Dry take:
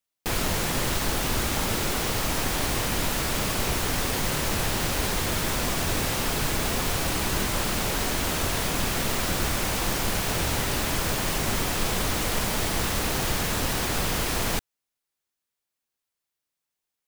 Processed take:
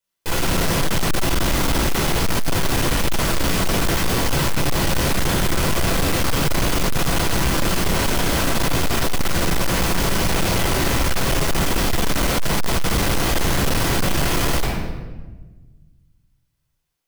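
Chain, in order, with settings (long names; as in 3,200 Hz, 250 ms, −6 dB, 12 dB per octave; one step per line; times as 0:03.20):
rectangular room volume 930 cubic metres, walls mixed, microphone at 4.9 metres
hard clipping −12.5 dBFS, distortion −9 dB
level −2 dB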